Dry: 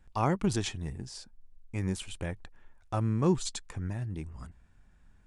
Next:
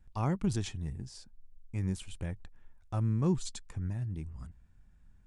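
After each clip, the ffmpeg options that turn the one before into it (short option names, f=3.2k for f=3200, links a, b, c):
-af "bass=f=250:g=8,treble=f=4k:g=2,volume=-7.5dB"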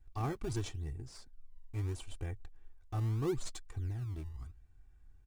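-filter_complex "[0:a]aecho=1:1:2.6:0.9,asplit=2[a][b];[b]acrusher=samples=26:mix=1:aa=0.000001:lfo=1:lforange=41.6:lforate=0.76,volume=-9dB[c];[a][c]amix=inputs=2:normalize=0,volume=-7dB"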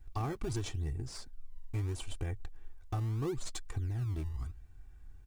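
-af "acompressor=threshold=-39dB:ratio=10,volume=7.5dB"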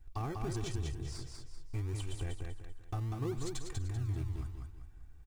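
-af "aecho=1:1:194|388|582|776|970:0.631|0.227|0.0818|0.0294|0.0106,volume=-2.5dB"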